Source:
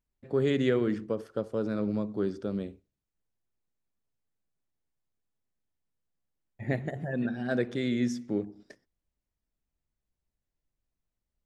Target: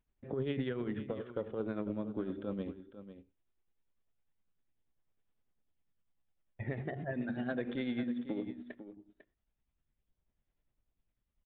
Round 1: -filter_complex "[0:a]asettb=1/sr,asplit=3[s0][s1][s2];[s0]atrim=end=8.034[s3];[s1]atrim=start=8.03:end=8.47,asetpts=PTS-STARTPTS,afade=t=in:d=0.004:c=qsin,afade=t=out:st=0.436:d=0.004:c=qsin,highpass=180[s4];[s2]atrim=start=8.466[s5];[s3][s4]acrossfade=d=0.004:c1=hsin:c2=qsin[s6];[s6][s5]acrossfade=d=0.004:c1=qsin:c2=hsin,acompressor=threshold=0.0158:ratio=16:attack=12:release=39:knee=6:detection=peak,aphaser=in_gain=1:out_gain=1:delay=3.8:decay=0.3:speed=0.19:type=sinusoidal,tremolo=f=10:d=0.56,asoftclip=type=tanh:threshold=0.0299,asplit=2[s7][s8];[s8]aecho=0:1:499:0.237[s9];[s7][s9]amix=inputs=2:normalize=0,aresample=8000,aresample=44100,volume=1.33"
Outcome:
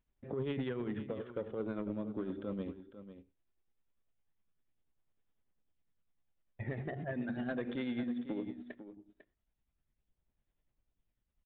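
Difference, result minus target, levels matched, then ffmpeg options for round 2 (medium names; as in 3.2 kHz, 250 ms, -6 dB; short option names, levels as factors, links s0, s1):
saturation: distortion +15 dB
-filter_complex "[0:a]asettb=1/sr,asplit=3[s0][s1][s2];[s0]atrim=end=8.034[s3];[s1]atrim=start=8.03:end=8.47,asetpts=PTS-STARTPTS,afade=t=in:d=0.004:c=qsin,afade=t=out:st=0.436:d=0.004:c=qsin,highpass=180[s4];[s2]atrim=start=8.466[s5];[s3][s4]acrossfade=d=0.004:c1=hsin:c2=qsin[s6];[s6][s5]acrossfade=d=0.004:c1=qsin:c2=hsin,acompressor=threshold=0.0158:ratio=16:attack=12:release=39:knee=6:detection=peak,aphaser=in_gain=1:out_gain=1:delay=3.8:decay=0.3:speed=0.19:type=sinusoidal,tremolo=f=10:d=0.56,asoftclip=type=tanh:threshold=0.0841,asplit=2[s7][s8];[s8]aecho=0:1:499:0.237[s9];[s7][s9]amix=inputs=2:normalize=0,aresample=8000,aresample=44100,volume=1.33"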